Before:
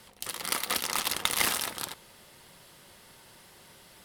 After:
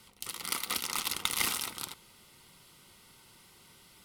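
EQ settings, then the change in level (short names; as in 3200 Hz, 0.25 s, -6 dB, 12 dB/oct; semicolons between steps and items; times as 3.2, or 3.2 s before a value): Butterworth band-stop 1700 Hz, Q 5.9; bell 610 Hz -9 dB 0.75 oct; -3.0 dB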